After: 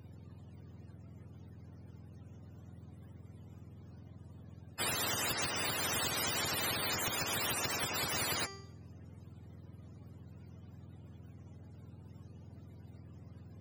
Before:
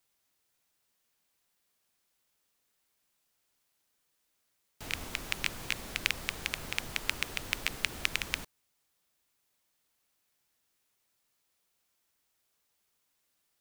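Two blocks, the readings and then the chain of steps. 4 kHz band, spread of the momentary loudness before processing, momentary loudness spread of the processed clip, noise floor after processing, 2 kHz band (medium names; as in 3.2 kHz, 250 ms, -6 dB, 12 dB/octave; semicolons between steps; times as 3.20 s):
0.0 dB, 6 LU, 20 LU, -56 dBFS, -3.0 dB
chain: spectrum inverted on a logarithmic axis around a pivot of 560 Hz; de-hum 392.3 Hz, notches 30; compression, threshold -31 dBFS, peak gain reduction 12 dB; spectrum-flattening compressor 10:1; trim +3 dB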